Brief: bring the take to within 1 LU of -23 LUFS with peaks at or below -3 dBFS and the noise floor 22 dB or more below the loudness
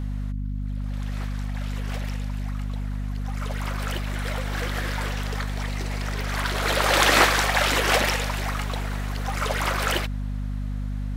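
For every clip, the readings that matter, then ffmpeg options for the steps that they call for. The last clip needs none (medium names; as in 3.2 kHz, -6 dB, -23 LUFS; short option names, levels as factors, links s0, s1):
hum 50 Hz; highest harmonic 250 Hz; hum level -26 dBFS; loudness -25.5 LUFS; peak level -3.5 dBFS; loudness target -23.0 LUFS
-> -af "bandreject=f=50:t=h:w=4,bandreject=f=100:t=h:w=4,bandreject=f=150:t=h:w=4,bandreject=f=200:t=h:w=4,bandreject=f=250:t=h:w=4"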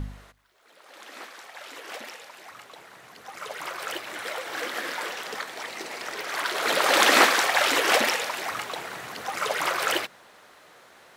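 hum not found; loudness -24.5 LUFS; peak level -3.5 dBFS; loudness target -23.0 LUFS
-> -af "volume=1.19,alimiter=limit=0.708:level=0:latency=1"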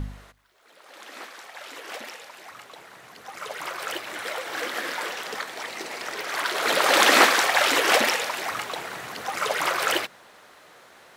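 loudness -23.0 LUFS; peak level -3.0 dBFS; noise floor -53 dBFS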